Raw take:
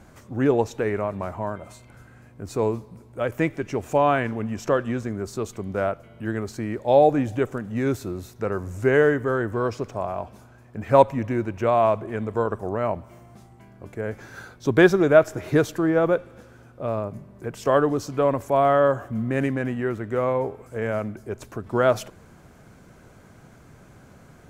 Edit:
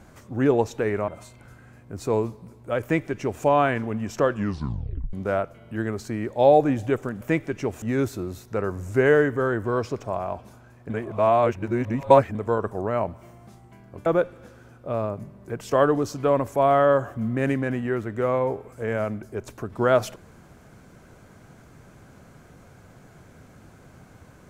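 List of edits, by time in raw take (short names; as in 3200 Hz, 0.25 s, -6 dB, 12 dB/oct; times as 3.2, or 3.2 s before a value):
1.08–1.57 cut
3.31–3.92 copy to 7.7
4.81 tape stop 0.81 s
10.78–12.23 reverse
13.94–16 cut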